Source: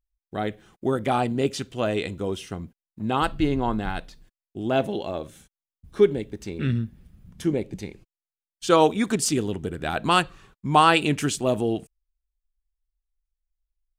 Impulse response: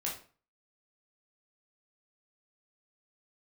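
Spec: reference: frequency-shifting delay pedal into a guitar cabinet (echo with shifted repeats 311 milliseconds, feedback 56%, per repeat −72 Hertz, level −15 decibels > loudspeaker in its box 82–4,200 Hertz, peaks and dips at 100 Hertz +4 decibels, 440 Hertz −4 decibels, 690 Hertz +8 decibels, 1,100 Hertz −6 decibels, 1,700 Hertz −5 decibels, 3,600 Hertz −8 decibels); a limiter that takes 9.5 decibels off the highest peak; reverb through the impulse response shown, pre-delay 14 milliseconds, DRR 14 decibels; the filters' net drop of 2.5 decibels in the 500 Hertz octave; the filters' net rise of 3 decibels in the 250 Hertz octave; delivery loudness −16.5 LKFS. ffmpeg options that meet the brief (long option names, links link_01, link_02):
-filter_complex "[0:a]equalizer=frequency=250:width_type=o:gain=6,equalizer=frequency=500:width_type=o:gain=-6.5,alimiter=limit=-14dB:level=0:latency=1,asplit=2[link_01][link_02];[1:a]atrim=start_sample=2205,adelay=14[link_03];[link_02][link_03]afir=irnorm=-1:irlink=0,volume=-16.5dB[link_04];[link_01][link_04]amix=inputs=2:normalize=0,asplit=6[link_05][link_06][link_07][link_08][link_09][link_10];[link_06]adelay=311,afreqshift=-72,volume=-15dB[link_11];[link_07]adelay=622,afreqshift=-144,volume=-20dB[link_12];[link_08]adelay=933,afreqshift=-216,volume=-25.1dB[link_13];[link_09]adelay=1244,afreqshift=-288,volume=-30.1dB[link_14];[link_10]adelay=1555,afreqshift=-360,volume=-35.1dB[link_15];[link_05][link_11][link_12][link_13][link_14][link_15]amix=inputs=6:normalize=0,highpass=82,equalizer=frequency=100:width_type=q:width=4:gain=4,equalizer=frequency=440:width_type=q:width=4:gain=-4,equalizer=frequency=690:width_type=q:width=4:gain=8,equalizer=frequency=1100:width_type=q:width=4:gain=-6,equalizer=frequency=1700:width_type=q:width=4:gain=-5,equalizer=frequency=3600:width_type=q:width=4:gain=-8,lowpass=frequency=4200:width=0.5412,lowpass=frequency=4200:width=1.3066,volume=10.5dB"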